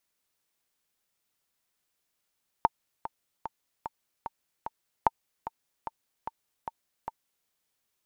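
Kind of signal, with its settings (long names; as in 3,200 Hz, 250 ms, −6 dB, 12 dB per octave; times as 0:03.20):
click track 149 BPM, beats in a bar 6, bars 2, 904 Hz, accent 14 dB −7 dBFS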